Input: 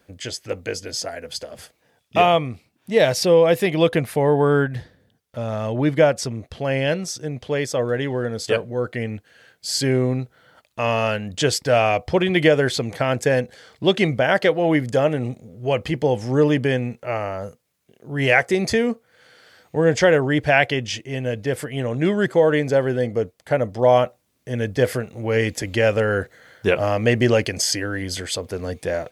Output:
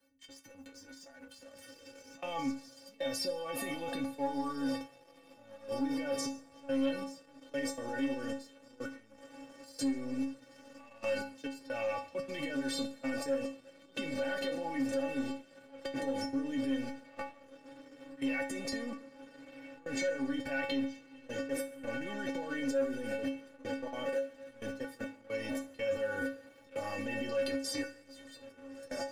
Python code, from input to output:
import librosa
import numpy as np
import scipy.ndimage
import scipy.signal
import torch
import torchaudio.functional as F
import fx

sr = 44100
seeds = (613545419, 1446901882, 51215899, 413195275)

p1 = scipy.signal.sosfilt(scipy.signal.butter(2, 43.0, 'highpass', fs=sr, output='sos'), x)
p2 = fx.high_shelf(p1, sr, hz=11000.0, db=4.0)
p3 = p2 + fx.echo_diffused(p2, sr, ms=1469, feedback_pct=69, wet_db=-15, dry=0)
p4 = fx.transient(p3, sr, attack_db=-11, sustain_db=8)
p5 = fx.dynamic_eq(p4, sr, hz=390.0, q=1.8, threshold_db=-32.0, ratio=4.0, max_db=3)
p6 = fx.auto_swell(p5, sr, attack_ms=158.0)
p7 = fx.level_steps(p6, sr, step_db=23)
p8 = fx.stiff_resonator(p7, sr, f0_hz=270.0, decay_s=0.37, stiffness=0.008)
p9 = fx.rev_double_slope(p8, sr, seeds[0], early_s=0.53, late_s=2.2, knee_db=-18, drr_db=10.0)
p10 = fx.leveller(p9, sr, passes=1)
y = fx.band_squash(p10, sr, depth_pct=40)